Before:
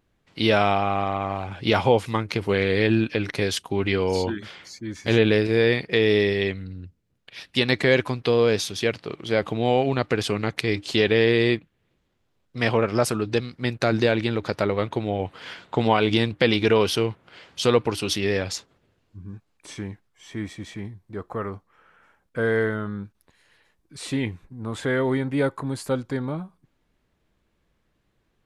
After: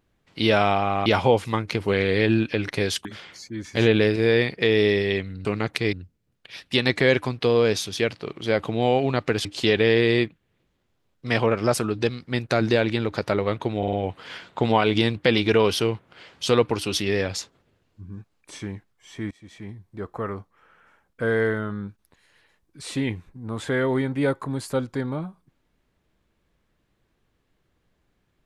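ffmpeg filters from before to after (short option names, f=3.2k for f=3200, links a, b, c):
-filter_complex "[0:a]asplit=10[a][b][c][d][e][f][g][h][i][j];[a]atrim=end=1.062[k];[b]atrim=start=1.668:end=3.662[l];[c]atrim=start=4.358:end=6.762[m];[d]atrim=start=10.278:end=10.762[n];[e]atrim=start=6.758:end=10.282[o];[f]atrim=start=10.758:end=15.142[p];[g]atrim=start=15.088:end=15.142[q];[h]atrim=start=15.088:end=15.142[r];[i]atrim=start=15.088:end=20.47,asetpts=PTS-STARTPTS,afade=t=out:st=5.378:d=0.004:c=hsin:silence=0.0841395[s];[j]atrim=start=20.47,asetpts=PTS-STARTPTS,afade=t=in:d=0.55:silence=0.0841395[t];[k][l]acrossfade=d=0.004:c1=hsin:c2=hsin[u];[u][m]acrossfade=d=0.004:c1=hsin:c2=hsin[v];[v][n]acrossfade=d=0.004:c1=hsin:c2=hsin[w];[w][o]acrossfade=d=0.004:c1=hsin:c2=hsin[x];[x][p]acrossfade=d=0.004:c1=hsin:c2=hsin[y];[y][q]acrossfade=d=0.004:c1=hsin:c2=hsin[z];[z][r]acrossfade=d=0.004:c1=hsin:c2=hsin[aa];[s][t]concat=n=2:v=0:a=1[ab];[aa][ab]acrossfade=d=0.004:c1=hsin:c2=hsin"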